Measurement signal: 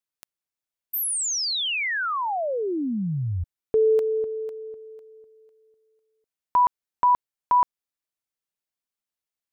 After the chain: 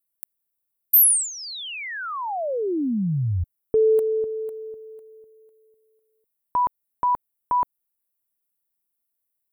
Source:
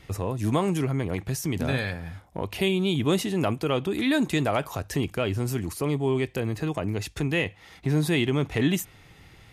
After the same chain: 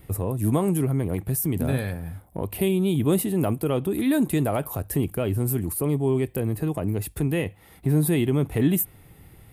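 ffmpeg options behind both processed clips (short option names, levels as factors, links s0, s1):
-af "tiltshelf=f=970:g=6,aexciter=amount=14.6:drive=0.9:freq=8700,volume=0.75"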